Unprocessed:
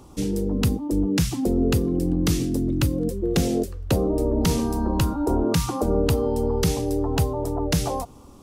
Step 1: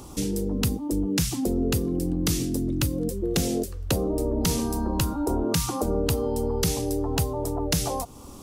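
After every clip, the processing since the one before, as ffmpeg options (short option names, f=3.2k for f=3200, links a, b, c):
-af "acompressor=threshold=-40dB:ratio=1.5,highshelf=f=4k:g=8,volume=4dB"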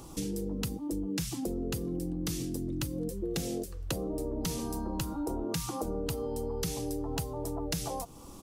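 -af "aecho=1:1:6.1:0.31,acompressor=threshold=-27dB:ratio=2.5,volume=-5dB"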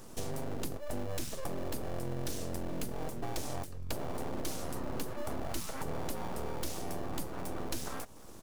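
-filter_complex "[0:a]asplit=2[a][b];[b]acrusher=samples=38:mix=1:aa=0.000001,volume=-9.5dB[c];[a][c]amix=inputs=2:normalize=0,aeval=exprs='abs(val(0))':c=same,volume=-2.5dB"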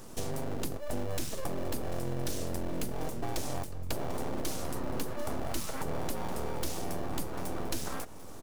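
-af "aecho=1:1:744:0.168,volume=2.5dB"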